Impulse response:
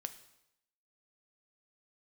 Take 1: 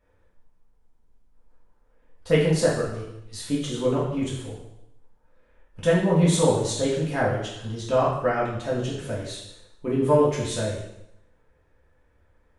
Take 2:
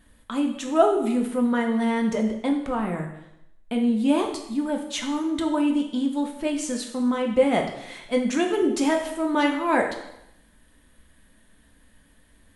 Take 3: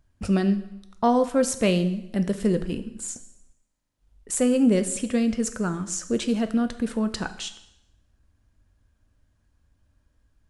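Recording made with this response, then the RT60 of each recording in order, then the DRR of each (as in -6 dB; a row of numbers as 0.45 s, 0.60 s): 3; 0.85 s, 0.85 s, 0.85 s; -7.5 dB, 2.0 dB, 9.0 dB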